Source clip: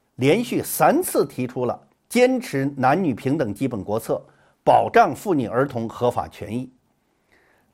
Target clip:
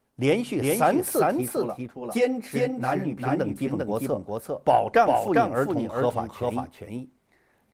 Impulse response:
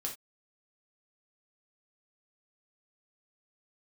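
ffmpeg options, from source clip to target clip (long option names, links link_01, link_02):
-filter_complex "[0:a]asplit=3[link_01][link_02][link_03];[link_01]afade=type=out:start_time=1.3:duration=0.02[link_04];[link_02]flanger=delay=8.2:depth=7.8:regen=-4:speed=1.4:shape=triangular,afade=type=in:start_time=1.3:duration=0.02,afade=type=out:start_time=3.34:duration=0.02[link_05];[link_03]afade=type=in:start_time=3.34:duration=0.02[link_06];[link_04][link_05][link_06]amix=inputs=3:normalize=0,aecho=1:1:399:0.708,volume=-4.5dB" -ar 48000 -c:a libopus -b:a 32k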